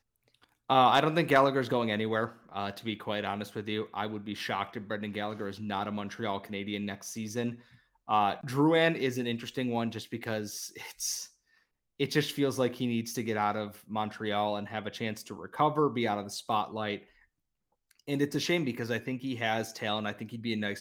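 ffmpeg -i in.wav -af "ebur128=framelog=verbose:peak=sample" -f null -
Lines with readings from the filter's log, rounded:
Integrated loudness:
  I:         -31.2 LUFS
  Threshold: -41.6 LUFS
Loudness range:
  LRA:         6.0 LU
  Threshold: -52.3 LUFS
  LRA low:   -35.4 LUFS
  LRA high:  -29.4 LUFS
Sample peak:
  Peak:      -10.5 dBFS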